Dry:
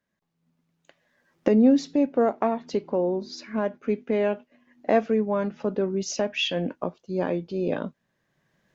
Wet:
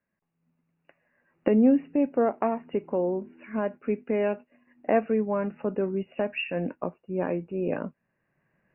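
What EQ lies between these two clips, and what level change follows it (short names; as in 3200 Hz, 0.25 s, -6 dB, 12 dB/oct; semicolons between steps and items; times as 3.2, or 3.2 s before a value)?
brick-wall FIR low-pass 2900 Hz; -2.0 dB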